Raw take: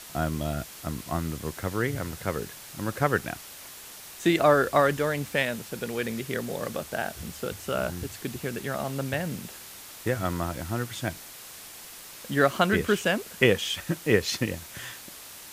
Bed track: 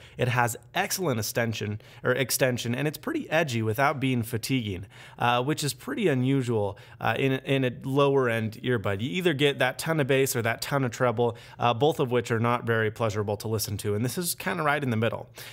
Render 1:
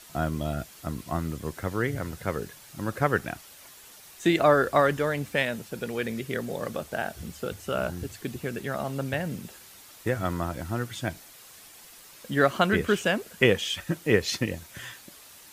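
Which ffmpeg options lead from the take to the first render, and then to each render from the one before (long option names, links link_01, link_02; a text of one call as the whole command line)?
ffmpeg -i in.wav -af "afftdn=noise_reduction=7:noise_floor=-45" out.wav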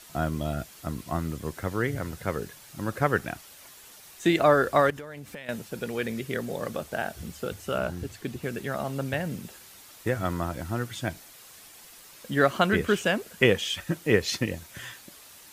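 ffmpeg -i in.wav -filter_complex "[0:a]asettb=1/sr,asplit=3[link_01][link_02][link_03];[link_01]atrim=end=4.904[link_04];[link_02]atrim=start=4.9:end=5.49,asetpts=PTS-STARTPTS,afade=type=in:duration=0.004:curve=qsin,afade=type=out:start_time=0.586:duration=0.004:curve=qsin,acompressor=threshold=-36dB:ratio=10:attack=3.2:release=140:knee=1:detection=peak[link_05];[link_03]atrim=start=5.486[link_06];[link_04][link_05]acrossfade=duration=0.004:curve1=hsin:curve2=qsin[link_07];[link_07][link_06]acrossfade=duration=0.004:curve1=qsin:curve2=hsin,asettb=1/sr,asplit=3[link_08][link_09][link_10];[link_08]atrim=end=7.784[link_11];[link_09]atrim=start=7.78:end=8.43,asetpts=PTS-STARTPTS,afade=type=in:duration=0.004:curve=qsin,afade=type=out:start_time=0.646:duration=0.004:curve=qsin,highshelf=frequency=6200:gain=-5[link_12];[link_10]atrim=start=8.426[link_13];[link_11][link_12]acrossfade=duration=0.004:curve1=hsin:curve2=qsin[link_14];[link_14][link_13]acrossfade=duration=0.004:curve1=qsin:curve2=hsin" out.wav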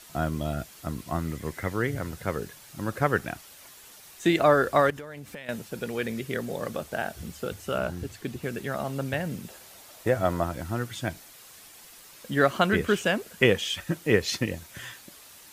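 ffmpeg -i in.wav -filter_complex "[0:a]asettb=1/sr,asplit=3[link_01][link_02][link_03];[link_01]atrim=end=1.274[link_04];[link_02]atrim=start=1.27:end=1.72,asetpts=PTS-STARTPTS,afade=type=in:duration=0.004:curve=qsin,afade=type=out:start_time=0.446:duration=0.004:curve=qsin,equalizer=frequency=2000:width_type=o:width=0.25:gain=11[link_05];[link_03]atrim=start=1.716[link_06];[link_04][link_05]acrossfade=duration=0.004:curve1=hsin:curve2=qsin[link_07];[link_07][link_06]acrossfade=duration=0.004:curve1=qsin:curve2=hsin,asettb=1/sr,asplit=3[link_08][link_09][link_10];[link_08]atrim=end=9.504[link_11];[link_09]atrim=start=9.5:end=10.44,asetpts=PTS-STARTPTS,afade=type=in:duration=0.004:curve=qsin,afade=type=out:start_time=0.936:duration=0.004:curve=qsin,equalizer=frequency=630:width=1.9:gain=9[link_12];[link_10]atrim=start=10.436[link_13];[link_11][link_12]acrossfade=duration=0.004:curve1=hsin:curve2=qsin[link_14];[link_14][link_13]acrossfade=duration=0.004:curve1=qsin:curve2=hsin" out.wav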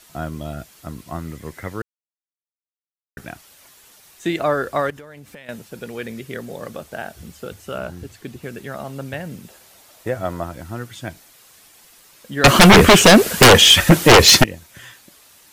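ffmpeg -i in.wav -filter_complex "[0:a]asettb=1/sr,asplit=3[link_01][link_02][link_03];[link_01]atrim=end=12.444[link_04];[link_02]atrim=start=12.44:end=14.44,asetpts=PTS-STARTPTS,afade=type=in:duration=0.004:curve=qsin,afade=type=out:start_time=1.996:duration=0.004:curve=qsin,aeval=exprs='0.668*sin(PI/2*8.91*val(0)/0.668)':channel_layout=same[link_05];[link_03]atrim=start=14.436[link_06];[link_04][link_05]acrossfade=duration=0.004:curve1=hsin:curve2=qsin[link_07];[link_07][link_06]acrossfade=duration=0.004:curve1=qsin:curve2=hsin,asplit=3[link_08][link_09][link_10];[link_08]atrim=end=1.82,asetpts=PTS-STARTPTS,afade=type=out:start_time=1.816:duration=0.004:curve=hsin[link_11];[link_09]atrim=start=1.82:end=3.17,asetpts=PTS-STARTPTS,volume=0[link_12];[link_10]atrim=start=3.17,asetpts=PTS-STARTPTS,afade=type=in:duration=0.004:curve=hsin[link_13];[link_11][link_12][link_13]concat=n=3:v=0:a=1" out.wav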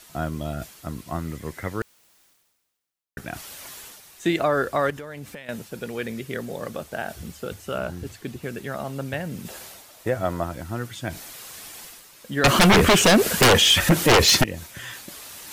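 ffmpeg -i in.wav -af "areverse,acompressor=mode=upward:threshold=-30dB:ratio=2.5,areverse,alimiter=limit=-10.5dB:level=0:latency=1:release=54" out.wav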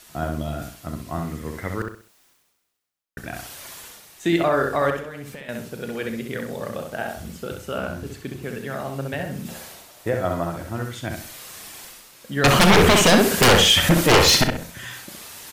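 ffmpeg -i in.wav -filter_complex "[0:a]asplit=2[link_01][link_02];[link_02]adelay=35,volume=-12.5dB[link_03];[link_01][link_03]amix=inputs=2:normalize=0,asplit=2[link_04][link_05];[link_05]adelay=65,lowpass=frequency=3500:poles=1,volume=-4dB,asplit=2[link_06][link_07];[link_07]adelay=65,lowpass=frequency=3500:poles=1,volume=0.33,asplit=2[link_08][link_09];[link_09]adelay=65,lowpass=frequency=3500:poles=1,volume=0.33,asplit=2[link_10][link_11];[link_11]adelay=65,lowpass=frequency=3500:poles=1,volume=0.33[link_12];[link_04][link_06][link_08][link_10][link_12]amix=inputs=5:normalize=0" out.wav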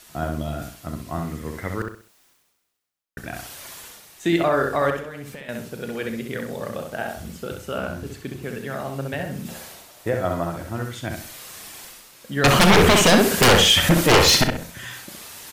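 ffmpeg -i in.wav -af anull out.wav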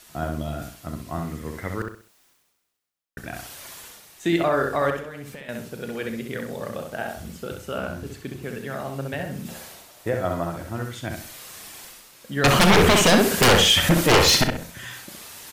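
ffmpeg -i in.wav -af "volume=-1.5dB" out.wav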